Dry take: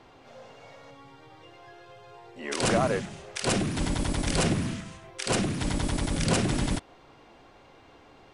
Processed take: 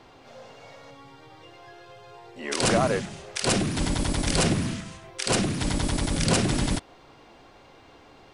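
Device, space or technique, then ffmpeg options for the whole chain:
presence and air boost: -af "equalizer=f=4600:t=o:w=0.77:g=2.5,highshelf=f=9500:g=4,volume=1.26"

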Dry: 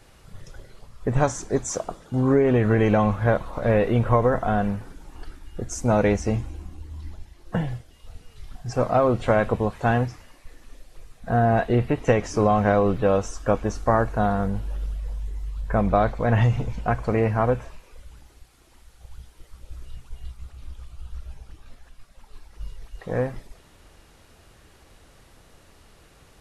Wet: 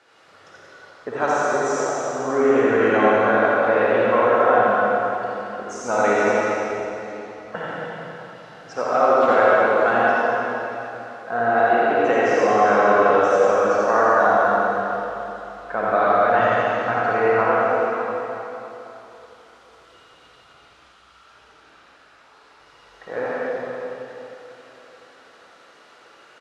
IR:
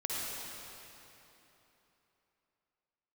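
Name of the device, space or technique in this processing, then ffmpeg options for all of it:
station announcement: -filter_complex "[0:a]asettb=1/sr,asplit=3[s0][s1][s2];[s0]atrim=end=20.714[s3];[s1]atrim=start=20.71:end=21.25,asetpts=PTS-STARTPTS,afade=t=in:d=0.004:c=qsin,afade=t=out:st=0.536:d=0.004:c=qsin,highpass=1000[s4];[s2]atrim=start=21.246[s5];[s3][s4]acrossfade=d=0.004:c1=hsin:c2=qsin[s6];[s6][s5]acrossfade=d=0.004:c1=qsin:c2=hsin,highpass=410,lowpass=4900,equalizer=f=1400:t=o:w=0.36:g=7.5,aecho=1:1:84.55|279.9:0.631|0.282[s7];[1:a]atrim=start_sample=2205[s8];[s7][s8]afir=irnorm=-1:irlink=0"

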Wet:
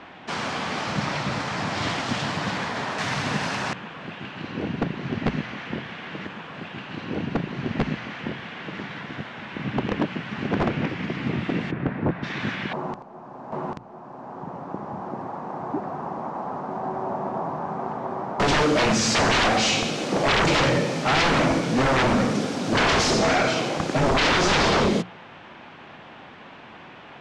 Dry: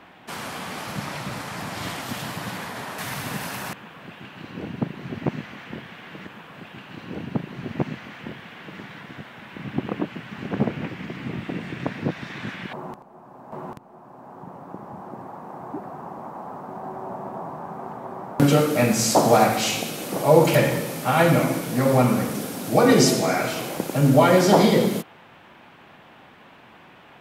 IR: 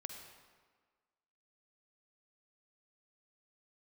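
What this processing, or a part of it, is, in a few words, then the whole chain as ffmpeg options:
synthesiser wavefolder: -filter_complex "[0:a]aeval=exprs='0.106*(abs(mod(val(0)/0.106+3,4)-2)-1)':c=same,lowpass=f=6400:w=0.5412,lowpass=f=6400:w=1.3066,asplit=3[s0][s1][s2];[s0]afade=t=out:st=11.7:d=0.02[s3];[s1]lowpass=1400,afade=t=in:st=11.7:d=0.02,afade=t=out:st=12.22:d=0.02[s4];[s2]afade=t=in:st=12.22:d=0.02[s5];[s3][s4][s5]amix=inputs=3:normalize=0,bandreject=f=60:t=h:w=6,bandreject=f=120:t=h:w=6,bandreject=f=180:t=h:w=6,volume=1.78"

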